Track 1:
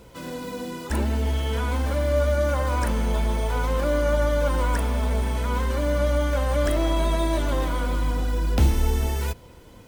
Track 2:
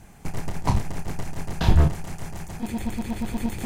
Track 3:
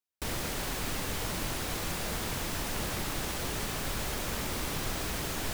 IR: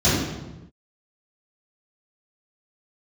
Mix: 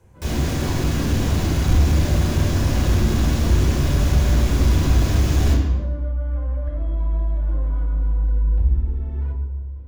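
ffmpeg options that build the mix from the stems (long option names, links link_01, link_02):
-filter_complex "[0:a]lowpass=1500,alimiter=limit=-19dB:level=0:latency=1:release=139,volume=-12.5dB,asplit=2[link_01][link_02];[link_02]volume=-20.5dB[link_03];[1:a]volume=-13dB,asplit=2[link_04][link_05];[link_05]volume=-21dB[link_06];[2:a]volume=-0.5dB,asplit=2[link_07][link_08];[link_08]volume=-12.5dB[link_09];[3:a]atrim=start_sample=2205[link_10];[link_03][link_06][link_09]amix=inputs=3:normalize=0[link_11];[link_11][link_10]afir=irnorm=-1:irlink=0[link_12];[link_01][link_04][link_07][link_12]amix=inputs=4:normalize=0,asoftclip=type=tanh:threshold=-9.5dB,asubboost=boost=3.5:cutoff=85"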